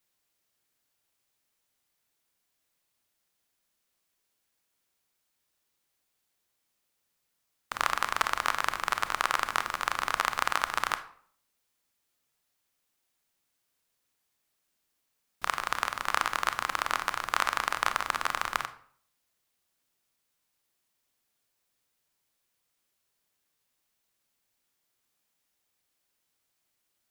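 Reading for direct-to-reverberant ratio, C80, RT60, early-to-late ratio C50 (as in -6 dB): 10.5 dB, 17.5 dB, 0.55 s, 14.0 dB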